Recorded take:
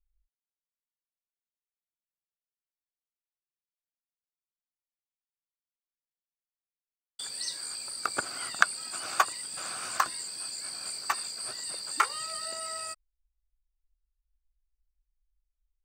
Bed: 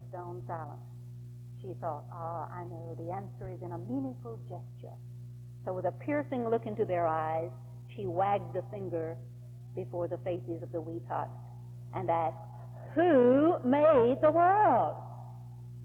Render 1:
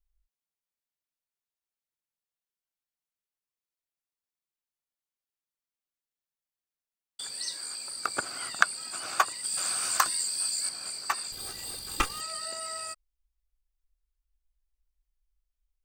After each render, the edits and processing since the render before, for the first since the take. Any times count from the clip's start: 7.37–7.90 s: high-pass 150 Hz; 9.44–10.69 s: treble shelf 3.8 kHz +10 dB; 11.32–12.21 s: comb filter that takes the minimum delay 2.5 ms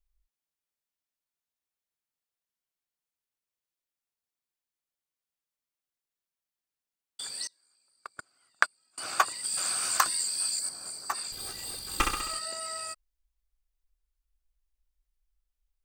7.47–8.98 s: gate -26 dBFS, range -32 dB; 10.59–11.15 s: peaking EQ 2.7 kHz -10.5 dB 1.5 oct; 11.86–12.39 s: flutter echo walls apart 11.3 m, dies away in 0.84 s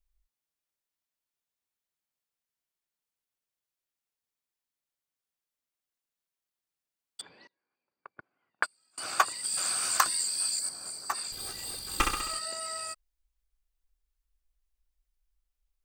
7.21–8.63 s: cabinet simulation 100–2200 Hz, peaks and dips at 670 Hz -4 dB, 1.3 kHz -10 dB, 1.9 kHz -6 dB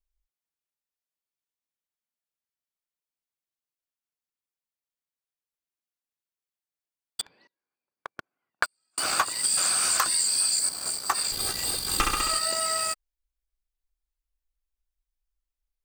waveshaping leveller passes 3; compression 6:1, threshold -21 dBFS, peak gain reduction 9.5 dB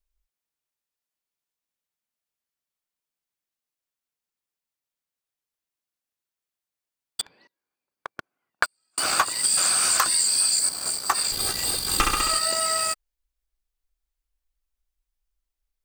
trim +3 dB

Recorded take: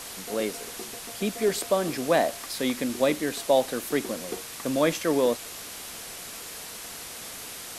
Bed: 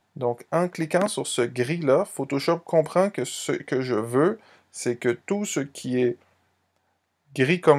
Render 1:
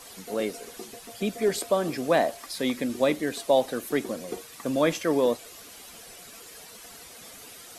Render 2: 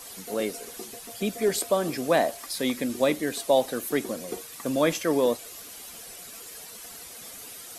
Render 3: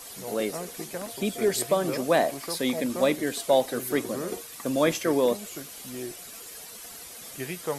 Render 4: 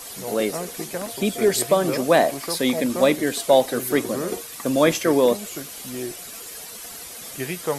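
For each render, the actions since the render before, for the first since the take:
noise reduction 10 dB, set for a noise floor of -40 dBFS
treble shelf 7.5 kHz +7.5 dB
add bed -14.5 dB
trim +5.5 dB

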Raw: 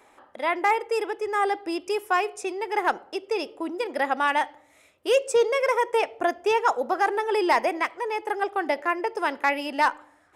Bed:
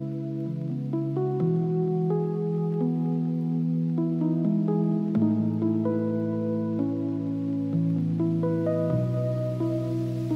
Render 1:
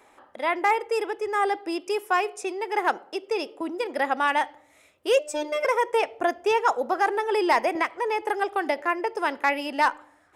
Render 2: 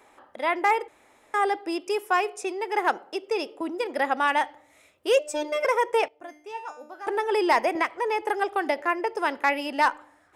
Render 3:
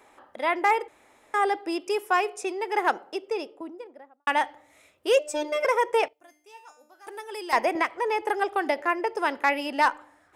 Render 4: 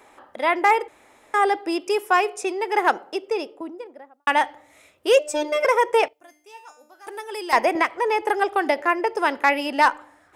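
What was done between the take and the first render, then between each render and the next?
1.58–3.61 s: high-pass 160 Hz; 5.19–5.65 s: robot voice 300 Hz; 7.75–8.82 s: three bands compressed up and down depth 70%
0.88–1.34 s: room tone; 6.08–7.07 s: feedback comb 300 Hz, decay 0.53 s, mix 90%
2.93–4.27 s: studio fade out; 6.13–7.53 s: pre-emphasis filter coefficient 0.8
trim +4.5 dB

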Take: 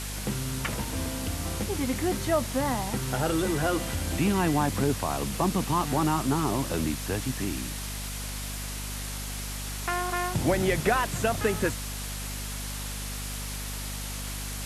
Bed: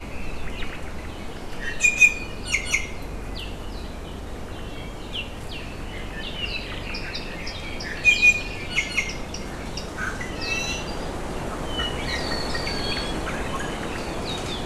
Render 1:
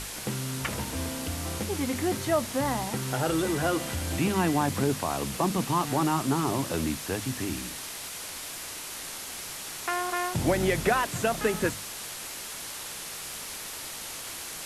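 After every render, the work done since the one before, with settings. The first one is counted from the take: hum notches 50/100/150/200/250 Hz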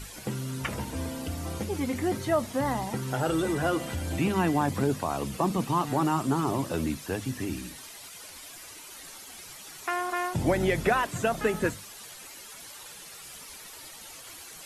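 noise reduction 11 dB, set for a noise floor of -39 dBFS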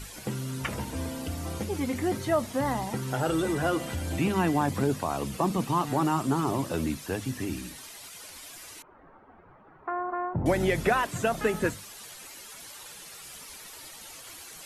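8.82–10.46 s: low-pass 1.3 kHz 24 dB/octave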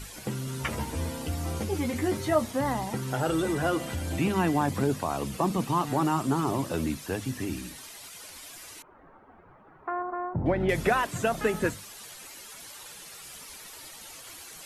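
0.46–2.51 s: doubling 13 ms -5 dB; 10.02–10.69 s: distance through air 420 m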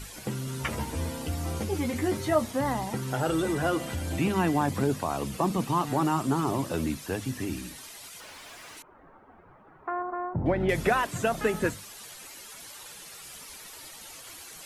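8.20–8.77 s: overdrive pedal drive 24 dB, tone 1.7 kHz, clips at -32.5 dBFS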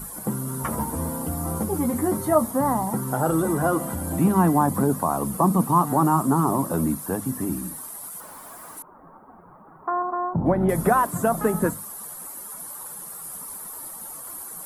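FFT filter 120 Hz 0 dB, 170 Hz +10 dB, 390 Hz +3 dB, 630 Hz +5 dB, 1.1 kHz +9 dB, 2.6 kHz -13 dB, 6.4 kHz -4 dB, 10 kHz +13 dB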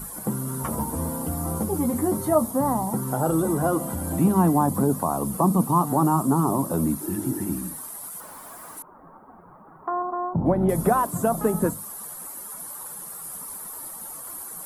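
7.04–7.46 s: spectral replace 290–1700 Hz after; dynamic bell 1.8 kHz, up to -7 dB, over -41 dBFS, Q 1.2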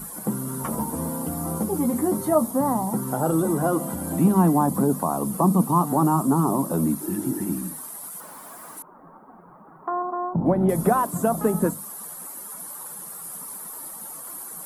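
resonant low shelf 130 Hz -6.5 dB, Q 1.5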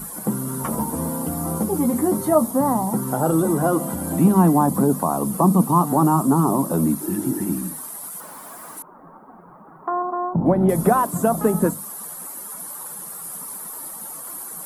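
trim +3 dB

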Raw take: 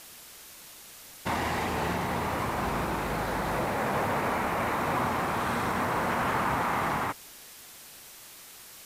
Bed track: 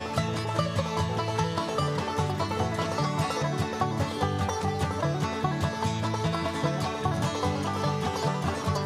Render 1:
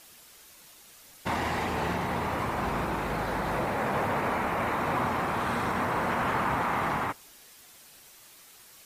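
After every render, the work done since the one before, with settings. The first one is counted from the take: noise reduction 6 dB, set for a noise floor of -49 dBFS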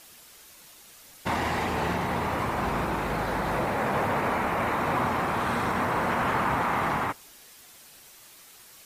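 trim +2 dB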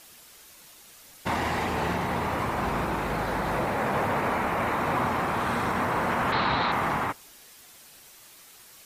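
6.32–6.72 s: resonant low-pass 4 kHz, resonance Q 8.8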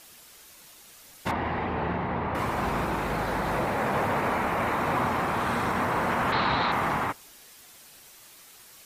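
1.31–2.35 s: distance through air 390 m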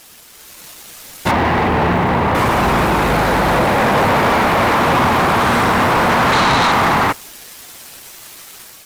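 waveshaping leveller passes 3; level rider gain up to 6 dB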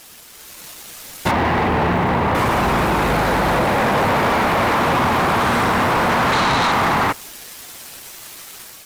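compression, threshold -15 dBFS, peak gain reduction 4 dB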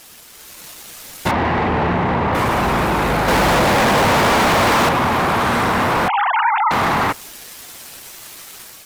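1.31–2.33 s: distance through air 73 m; 3.28–4.89 s: waveshaping leveller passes 3; 6.08–6.71 s: formants replaced by sine waves

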